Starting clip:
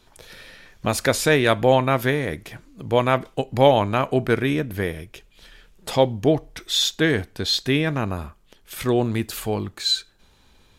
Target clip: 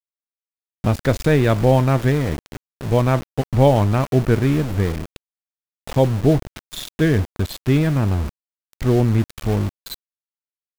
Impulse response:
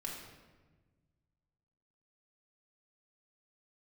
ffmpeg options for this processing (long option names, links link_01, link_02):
-af "aemphasis=mode=reproduction:type=riaa,aeval=exprs='val(0)*gte(abs(val(0)),0.0708)':channel_layout=same,volume=-2.5dB"